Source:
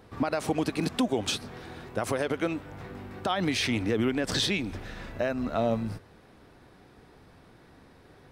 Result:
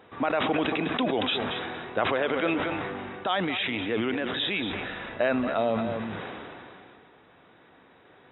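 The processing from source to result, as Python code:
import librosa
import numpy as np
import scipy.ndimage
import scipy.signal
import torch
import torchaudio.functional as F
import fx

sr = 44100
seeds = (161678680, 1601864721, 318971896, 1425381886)

y = fx.highpass(x, sr, hz=480.0, slope=6)
y = fx.rider(y, sr, range_db=5, speed_s=0.5)
y = fx.brickwall_lowpass(y, sr, high_hz=3900.0)
y = y + 10.0 ** (-13.0 / 20.0) * np.pad(y, (int(231 * sr / 1000.0), 0))[:len(y)]
y = fx.sustainer(y, sr, db_per_s=22.0)
y = F.gain(torch.from_numpy(y), 3.0).numpy()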